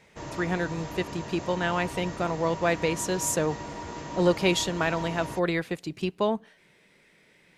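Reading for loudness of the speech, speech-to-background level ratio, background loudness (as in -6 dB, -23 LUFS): -28.0 LUFS, 10.0 dB, -38.0 LUFS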